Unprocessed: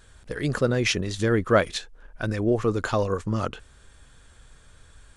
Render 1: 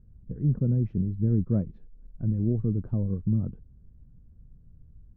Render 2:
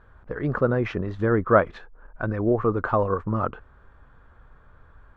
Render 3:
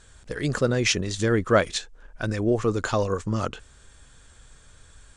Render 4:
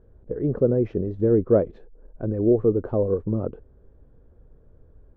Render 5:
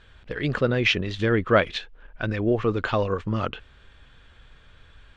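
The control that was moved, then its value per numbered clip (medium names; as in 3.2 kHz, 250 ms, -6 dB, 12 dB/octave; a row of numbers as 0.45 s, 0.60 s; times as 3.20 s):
resonant low-pass, frequency: 180 Hz, 1.2 kHz, 7.8 kHz, 450 Hz, 3 kHz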